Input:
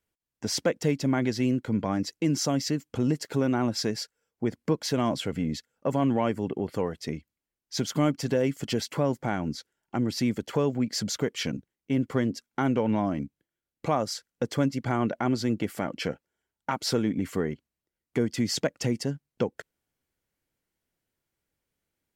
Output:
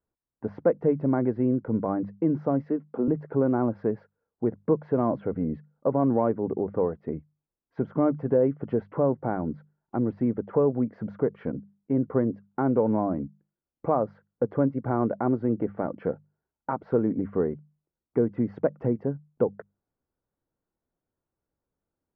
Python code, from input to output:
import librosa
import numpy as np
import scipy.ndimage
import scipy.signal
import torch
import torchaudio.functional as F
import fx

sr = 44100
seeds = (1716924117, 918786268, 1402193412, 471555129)

y = fx.highpass(x, sr, hz=200.0, slope=24, at=(2.64, 3.08))
y = fx.dynamic_eq(y, sr, hz=460.0, q=1.6, threshold_db=-40.0, ratio=4.0, max_db=5)
y = scipy.signal.sosfilt(scipy.signal.butter(4, 1300.0, 'lowpass', fs=sr, output='sos'), y)
y = fx.hum_notches(y, sr, base_hz=50, count=4)